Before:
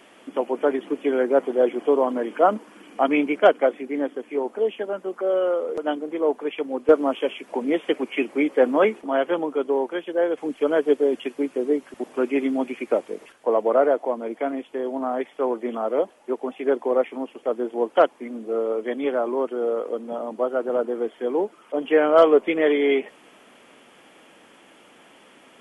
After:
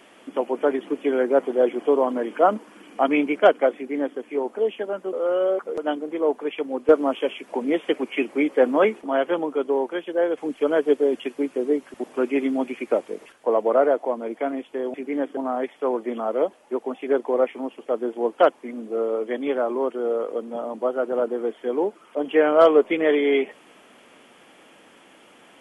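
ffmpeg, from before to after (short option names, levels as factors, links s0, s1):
-filter_complex "[0:a]asplit=5[s0][s1][s2][s3][s4];[s0]atrim=end=5.132[s5];[s1]atrim=start=5.128:end=5.672,asetpts=PTS-STARTPTS,areverse[s6];[s2]atrim=start=5.668:end=14.942[s7];[s3]atrim=start=3.758:end=4.192[s8];[s4]atrim=start=14.938[s9];[s5][s6]acrossfade=d=0.004:c1=hsin:c2=hsin[s10];[s10][s7]acrossfade=d=0.004:c1=hsin:c2=hsin[s11];[s11][s8]acrossfade=d=0.004:c1=hsin:c2=hsin[s12];[s12][s9]acrossfade=d=0.004:c1=hsin:c2=hsin"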